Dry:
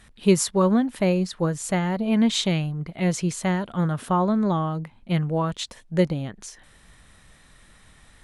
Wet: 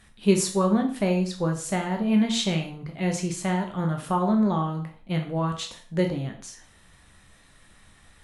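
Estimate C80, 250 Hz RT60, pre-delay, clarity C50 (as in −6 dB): 13.0 dB, 0.45 s, 6 ms, 9.0 dB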